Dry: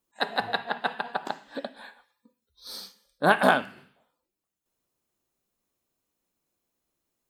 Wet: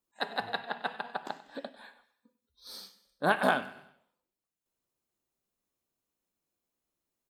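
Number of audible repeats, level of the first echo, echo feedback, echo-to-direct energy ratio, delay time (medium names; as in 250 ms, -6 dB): 3, -18.0 dB, 45%, -17.0 dB, 96 ms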